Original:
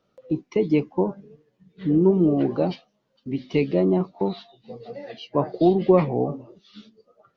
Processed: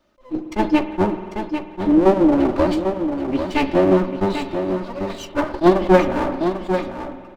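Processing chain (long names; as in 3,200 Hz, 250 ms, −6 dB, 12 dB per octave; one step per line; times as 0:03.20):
lower of the sound and its delayed copy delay 3.3 ms
on a send: single-tap delay 796 ms −8 dB
on the sum: spring reverb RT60 2.3 s, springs 48 ms, chirp 35 ms, DRR 11 dB
level that may rise only so fast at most 370 dB per second
level +7 dB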